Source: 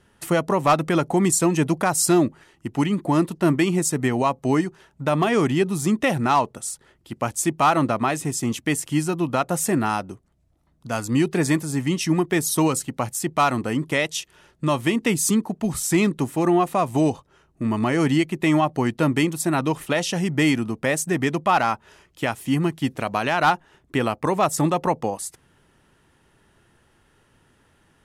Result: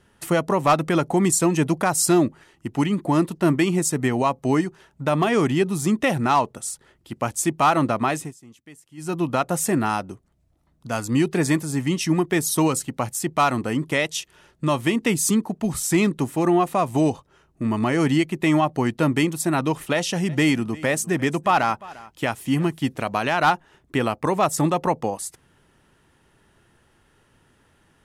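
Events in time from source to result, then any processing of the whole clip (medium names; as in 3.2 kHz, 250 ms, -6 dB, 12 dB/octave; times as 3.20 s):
8.16–9.15 s: dip -23 dB, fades 0.18 s
19.94–22.78 s: delay 349 ms -20.5 dB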